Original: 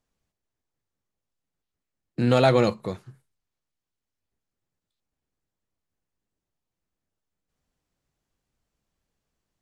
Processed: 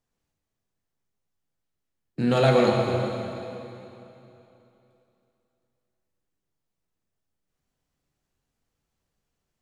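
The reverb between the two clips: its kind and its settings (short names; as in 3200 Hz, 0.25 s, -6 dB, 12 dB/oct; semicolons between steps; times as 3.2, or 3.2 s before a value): plate-style reverb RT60 3 s, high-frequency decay 0.95×, DRR -1 dB; gain -3 dB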